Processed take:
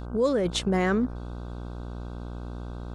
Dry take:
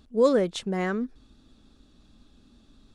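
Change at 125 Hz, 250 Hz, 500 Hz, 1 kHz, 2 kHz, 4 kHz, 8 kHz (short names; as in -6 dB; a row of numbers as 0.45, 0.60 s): +6.0, +1.5, -2.0, +1.5, +2.5, +5.0, +5.0 dB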